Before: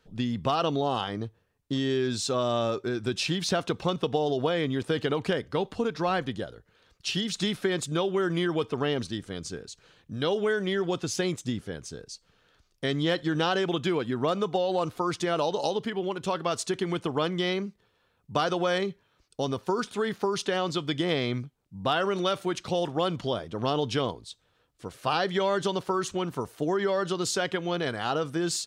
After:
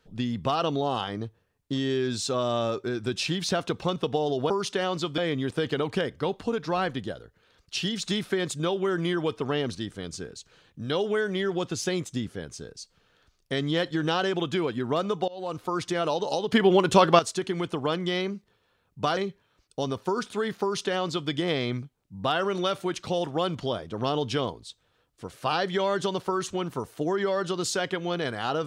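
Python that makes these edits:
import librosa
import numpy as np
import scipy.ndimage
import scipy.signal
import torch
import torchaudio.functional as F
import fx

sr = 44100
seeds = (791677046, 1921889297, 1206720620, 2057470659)

y = fx.edit(x, sr, fx.fade_in_from(start_s=14.6, length_s=0.59, curve='qsin', floor_db=-23.0),
    fx.clip_gain(start_s=15.84, length_s=0.67, db=11.0),
    fx.cut(start_s=18.49, length_s=0.29),
    fx.duplicate(start_s=20.23, length_s=0.68, to_s=4.5), tone=tone)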